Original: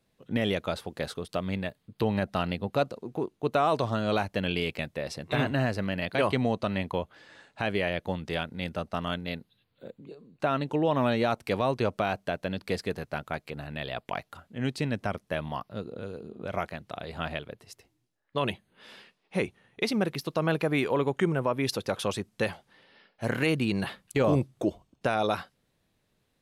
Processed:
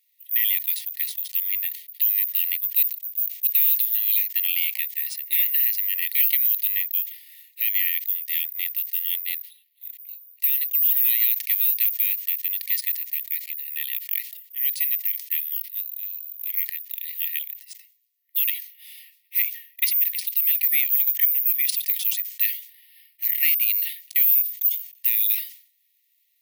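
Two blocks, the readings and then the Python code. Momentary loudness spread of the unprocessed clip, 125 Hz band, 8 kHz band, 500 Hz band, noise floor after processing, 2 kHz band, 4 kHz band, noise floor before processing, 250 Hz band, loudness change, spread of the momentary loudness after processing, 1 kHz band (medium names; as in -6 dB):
12 LU, under -40 dB, +12.5 dB, under -40 dB, -66 dBFS, 0.0 dB, +3.0 dB, -74 dBFS, under -40 dB, +9.5 dB, 12 LU, under -40 dB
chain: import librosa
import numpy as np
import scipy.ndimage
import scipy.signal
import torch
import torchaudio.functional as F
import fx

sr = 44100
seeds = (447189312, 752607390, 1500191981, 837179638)

y = fx.vibrato(x, sr, rate_hz=4.0, depth_cents=5.8)
y = (np.kron(y[::3], np.eye(3)[0]) * 3)[:len(y)]
y = fx.brickwall_highpass(y, sr, low_hz=1800.0)
y = fx.sustainer(y, sr, db_per_s=120.0)
y = F.gain(torch.from_numpy(y), 2.5).numpy()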